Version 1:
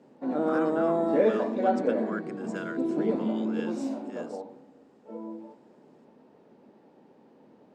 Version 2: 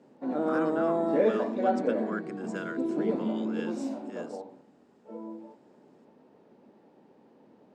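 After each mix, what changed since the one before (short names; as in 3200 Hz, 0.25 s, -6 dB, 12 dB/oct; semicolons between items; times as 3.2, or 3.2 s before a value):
reverb: off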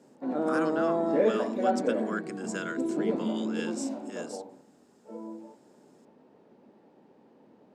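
speech: remove LPF 1600 Hz 6 dB/oct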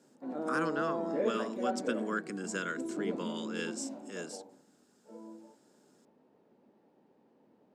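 background -8.0 dB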